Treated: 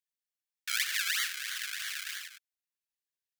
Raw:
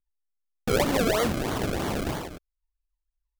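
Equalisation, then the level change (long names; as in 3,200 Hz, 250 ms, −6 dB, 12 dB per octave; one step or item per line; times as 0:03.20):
elliptic high-pass filter 1,600 Hz, stop band 50 dB
+1.5 dB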